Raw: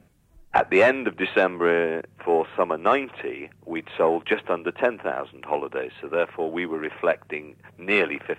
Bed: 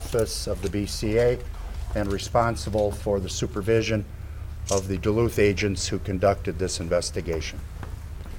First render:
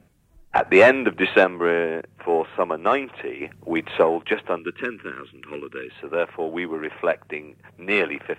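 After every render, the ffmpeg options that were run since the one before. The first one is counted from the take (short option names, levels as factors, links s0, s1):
-filter_complex "[0:a]asplit=3[s0][s1][s2];[s0]afade=t=out:st=3.4:d=0.02[s3];[s1]acontrast=61,afade=t=in:st=3.4:d=0.02,afade=t=out:st=4.02:d=0.02[s4];[s2]afade=t=in:st=4.02:d=0.02[s5];[s3][s4][s5]amix=inputs=3:normalize=0,asettb=1/sr,asplit=3[s6][s7][s8];[s6]atrim=end=4.594[s9];[s7]atrim=start=4.59:end=5.9,asetpts=PTS-STARTPTS,afade=t=in:d=0.004:c=qsin,afade=t=out:st=1.306:d=0.004:c=qsin,asuperstop=centerf=720:order=4:qfactor=0.82[s10];[s8]atrim=start=5.896[s11];[s9][s10]acrossfade=d=0.004:c1=hsin:c2=qsin[s12];[s12][s11]acrossfade=d=0.004:c1=qsin:c2=hsin,asplit=3[s13][s14][s15];[s13]atrim=end=0.662[s16];[s14]atrim=start=0.658:end=1.442,asetpts=PTS-STARTPTS,volume=1.68[s17];[s15]atrim=start=1.438[s18];[s16][s17]acrossfade=d=0.004:c1=hsin:c2=hsin[s19];[s19][s18]acrossfade=d=0.004:c1=hsin:c2=hsin"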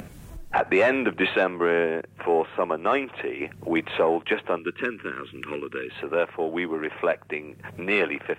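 -af "alimiter=limit=0.237:level=0:latency=1:release=11,acompressor=mode=upward:threshold=0.0501:ratio=2.5"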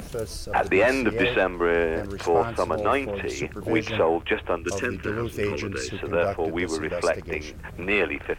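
-filter_complex "[1:a]volume=0.447[s0];[0:a][s0]amix=inputs=2:normalize=0"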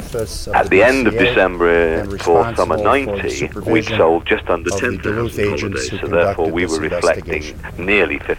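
-af "volume=2.82,alimiter=limit=0.891:level=0:latency=1"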